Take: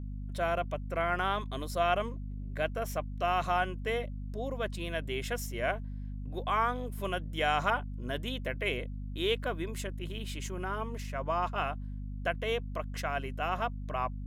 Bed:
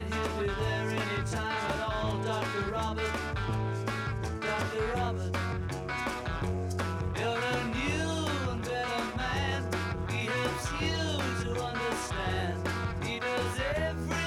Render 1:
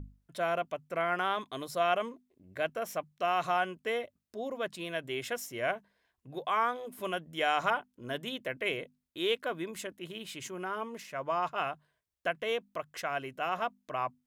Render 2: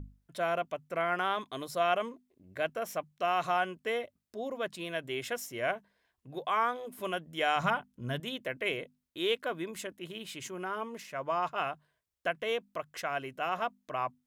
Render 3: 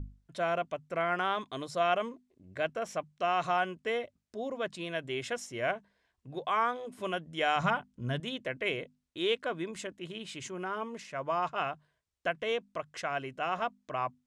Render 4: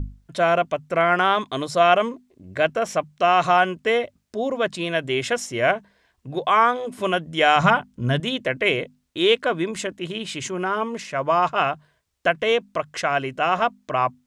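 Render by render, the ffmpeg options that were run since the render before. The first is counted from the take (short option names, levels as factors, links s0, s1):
-af "bandreject=f=50:t=h:w=6,bandreject=f=100:t=h:w=6,bandreject=f=150:t=h:w=6,bandreject=f=200:t=h:w=6,bandreject=f=250:t=h:w=6"
-filter_complex "[0:a]asettb=1/sr,asplit=3[s0][s1][s2];[s0]atrim=end=7.564[s3];[s1]atrim=start=7.56:end=8.2,asetpts=PTS-STARTPTS,afade=t=in:d=0.004:c=qsin,afade=t=out:st=0.636:d=0.004:c=qsin,lowshelf=f=240:t=q:w=1.5:g=8.5[s4];[s2]atrim=start=8.196[s5];[s3][s4]acrossfade=d=0.004:c1=hsin:c2=qsin[s6];[s6][s5]acrossfade=d=0.004:c1=qsin:c2=hsin"
-af "lowpass=f=8800:w=0.5412,lowpass=f=8800:w=1.3066,lowshelf=f=160:g=5"
-af "volume=3.98"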